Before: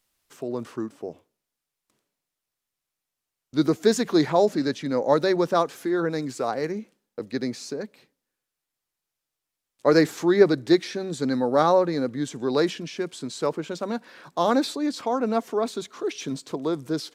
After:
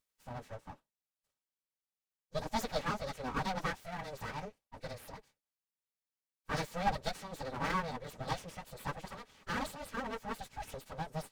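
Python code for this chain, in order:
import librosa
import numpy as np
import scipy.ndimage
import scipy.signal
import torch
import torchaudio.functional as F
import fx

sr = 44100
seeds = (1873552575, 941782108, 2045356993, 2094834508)

y = fx.stretch_vocoder_free(x, sr, factor=0.66)
y = np.abs(y)
y = fx.notch_comb(y, sr, f0_hz=350.0)
y = y * librosa.db_to_amplitude(-5.5)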